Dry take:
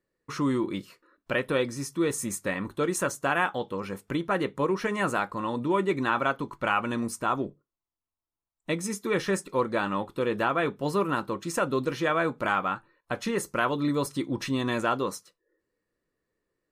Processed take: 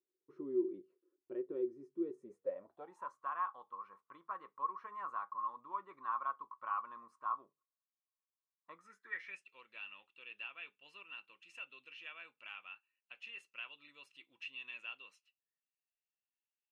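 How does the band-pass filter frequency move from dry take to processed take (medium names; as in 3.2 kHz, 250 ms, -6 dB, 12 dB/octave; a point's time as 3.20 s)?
band-pass filter, Q 18
2.18 s 370 Hz
3.14 s 1.1 kHz
8.73 s 1.1 kHz
9.41 s 2.7 kHz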